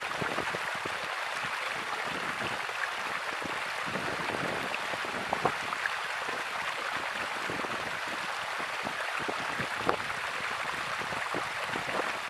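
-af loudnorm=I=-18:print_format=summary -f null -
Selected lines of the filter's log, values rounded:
Input Integrated:    -32.3 LUFS
Input True Peak:      -9.2 dBTP
Input LRA:             0.7 LU
Input Threshold:     -42.3 LUFS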